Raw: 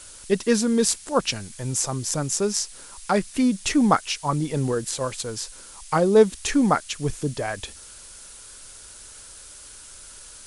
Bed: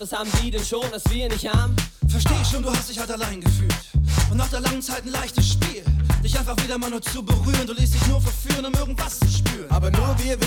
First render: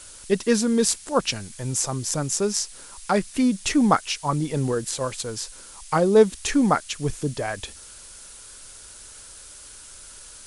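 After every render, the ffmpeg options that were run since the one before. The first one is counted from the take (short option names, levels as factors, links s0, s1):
-af anull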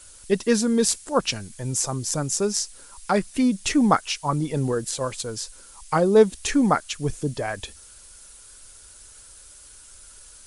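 -af "afftdn=nr=6:nf=-44"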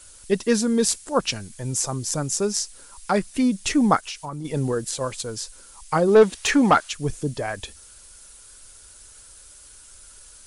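-filter_complex "[0:a]asplit=3[s0][s1][s2];[s0]afade=t=out:st=4:d=0.02[s3];[s1]acompressor=threshold=0.0355:ratio=6:attack=3.2:release=140:knee=1:detection=peak,afade=t=in:st=4:d=0.02,afade=t=out:st=4.44:d=0.02[s4];[s2]afade=t=in:st=4.44:d=0.02[s5];[s3][s4][s5]amix=inputs=3:normalize=0,asplit=3[s6][s7][s8];[s6]afade=t=out:st=6.07:d=0.02[s9];[s7]asplit=2[s10][s11];[s11]highpass=f=720:p=1,volume=6.31,asoftclip=type=tanh:threshold=0.562[s12];[s10][s12]amix=inputs=2:normalize=0,lowpass=f=2800:p=1,volume=0.501,afade=t=in:st=6.07:d=0.02,afade=t=out:st=6.88:d=0.02[s13];[s8]afade=t=in:st=6.88:d=0.02[s14];[s9][s13][s14]amix=inputs=3:normalize=0"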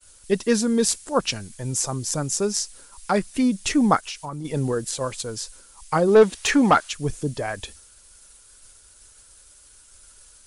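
-af "agate=range=0.0224:threshold=0.00794:ratio=3:detection=peak"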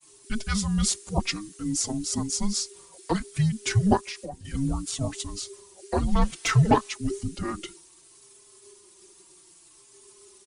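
-filter_complex "[0:a]afreqshift=-410,asplit=2[s0][s1];[s1]adelay=4,afreqshift=-0.62[s2];[s0][s2]amix=inputs=2:normalize=1"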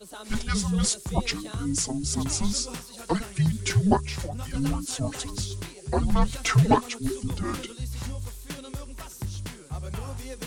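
-filter_complex "[1:a]volume=0.178[s0];[0:a][s0]amix=inputs=2:normalize=0"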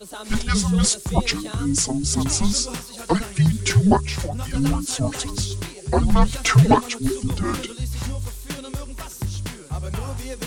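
-af "volume=2,alimiter=limit=0.794:level=0:latency=1"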